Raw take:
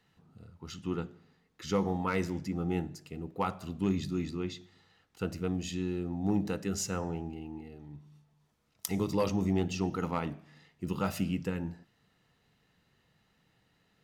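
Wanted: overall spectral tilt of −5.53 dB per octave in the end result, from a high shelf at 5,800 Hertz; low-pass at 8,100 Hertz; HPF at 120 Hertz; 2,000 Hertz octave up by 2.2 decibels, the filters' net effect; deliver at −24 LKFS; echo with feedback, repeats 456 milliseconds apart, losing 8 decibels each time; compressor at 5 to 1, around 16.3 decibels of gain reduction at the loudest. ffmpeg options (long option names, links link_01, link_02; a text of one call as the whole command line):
ffmpeg -i in.wav -af "highpass=120,lowpass=8100,equalizer=frequency=2000:width_type=o:gain=4,highshelf=frequency=5800:gain=-8,acompressor=threshold=-44dB:ratio=5,aecho=1:1:456|912|1368|1824|2280:0.398|0.159|0.0637|0.0255|0.0102,volume=24dB" out.wav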